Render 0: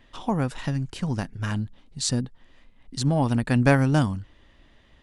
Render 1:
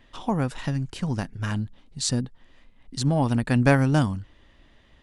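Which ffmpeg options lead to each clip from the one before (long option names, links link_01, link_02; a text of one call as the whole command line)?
ffmpeg -i in.wav -af anull out.wav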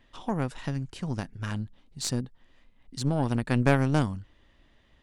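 ffmpeg -i in.wav -af "aeval=exprs='0.668*(cos(1*acos(clip(val(0)/0.668,-1,1)))-cos(1*PI/2))+0.119*(cos(4*acos(clip(val(0)/0.668,-1,1)))-cos(4*PI/2))':channel_layout=same,volume=-5.5dB" out.wav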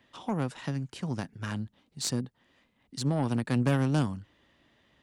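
ffmpeg -i in.wav -filter_complex "[0:a]highpass=110,acrossover=split=210|5200[link_01][link_02][link_03];[link_02]asoftclip=type=tanh:threshold=-22.5dB[link_04];[link_01][link_04][link_03]amix=inputs=3:normalize=0" out.wav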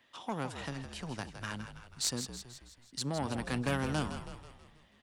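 ffmpeg -i in.wav -filter_complex "[0:a]lowshelf=frequency=470:gain=-10.5,asplit=2[link_01][link_02];[link_02]asplit=6[link_03][link_04][link_05][link_06][link_07][link_08];[link_03]adelay=162,afreqshift=-60,volume=-9dB[link_09];[link_04]adelay=324,afreqshift=-120,volume=-14.5dB[link_10];[link_05]adelay=486,afreqshift=-180,volume=-20dB[link_11];[link_06]adelay=648,afreqshift=-240,volume=-25.5dB[link_12];[link_07]adelay=810,afreqshift=-300,volume=-31.1dB[link_13];[link_08]adelay=972,afreqshift=-360,volume=-36.6dB[link_14];[link_09][link_10][link_11][link_12][link_13][link_14]amix=inputs=6:normalize=0[link_15];[link_01][link_15]amix=inputs=2:normalize=0" out.wav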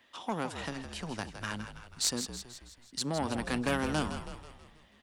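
ffmpeg -i in.wav -af "equalizer=frequency=130:width_type=o:width=0.3:gain=-10,volume=3dB" out.wav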